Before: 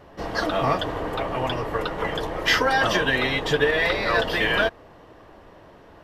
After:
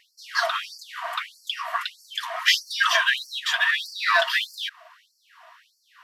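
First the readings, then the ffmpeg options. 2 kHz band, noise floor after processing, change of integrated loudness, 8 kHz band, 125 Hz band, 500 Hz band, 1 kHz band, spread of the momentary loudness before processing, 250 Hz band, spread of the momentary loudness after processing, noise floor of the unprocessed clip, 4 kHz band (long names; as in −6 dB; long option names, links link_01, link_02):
0.0 dB, −68 dBFS, −1.0 dB, +4.0 dB, below −40 dB, −11.5 dB, −2.5 dB, 8 LU, below −40 dB, 12 LU, −49 dBFS, +3.0 dB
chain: -filter_complex "[0:a]asplit=2[link_01][link_02];[link_02]aeval=exprs='clip(val(0),-1,0.0531)':channel_layout=same,volume=-11.5dB[link_03];[link_01][link_03]amix=inputs=2:normalize=0,asuperstop=centerf=830:order=8:qfactor=5.1,afftfilt=real='re*gte(b*sr/1024,610*pow(4400/610,0.5+0.5*sin(2*PI*1.6*pts/sr)))':imag='im*gte(b*sr/1024,610*pow(4400/610,0.5+0.5*sin(2*PI*1.6*pts/sr)))':win_size=1024:overlap=0.75,volume=2.5dB"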